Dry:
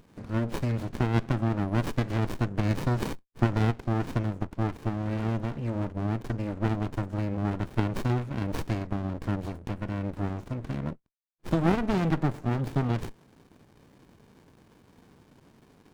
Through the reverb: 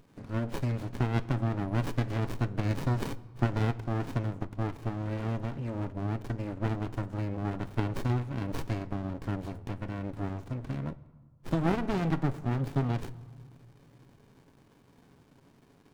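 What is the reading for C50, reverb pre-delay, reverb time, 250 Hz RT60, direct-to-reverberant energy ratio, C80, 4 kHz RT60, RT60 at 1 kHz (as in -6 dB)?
19.5 dB, 7 ms, 1.6 s, 2.1 s, 11.5 dB, 21.0 dB, 0.95 s, 1.7 s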